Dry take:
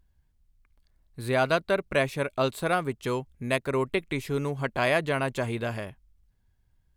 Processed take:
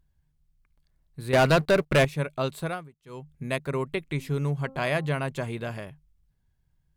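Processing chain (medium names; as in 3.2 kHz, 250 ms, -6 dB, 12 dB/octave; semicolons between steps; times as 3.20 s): peaking EQ 150 Hz +13.5 dB 0.21 oct; 1.33–2.05 s: waveshaping leveller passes 3; 2.60–3.35 s: dip -22 dB, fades 0.29 s; 4.02–5.11 s: de-hum 266.1 Hz, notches 5; trim -3 dB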